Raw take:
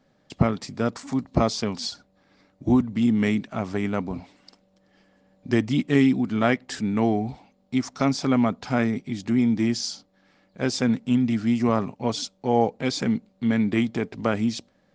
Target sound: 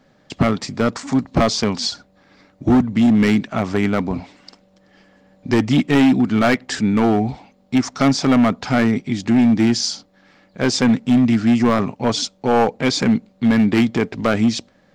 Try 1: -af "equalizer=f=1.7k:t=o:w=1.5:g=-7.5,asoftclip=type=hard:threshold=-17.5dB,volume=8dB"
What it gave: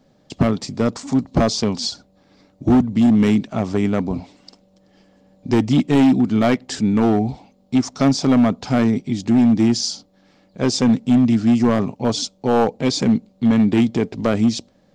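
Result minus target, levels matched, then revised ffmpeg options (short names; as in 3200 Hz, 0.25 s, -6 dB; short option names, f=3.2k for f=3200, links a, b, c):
2000 Hz band -6.0 dB
-af "equalizer=f=1.7k:t=o:w=1.5:g=2,asoftclip=type=hard:threshold=-17.5dB,volume=8dB"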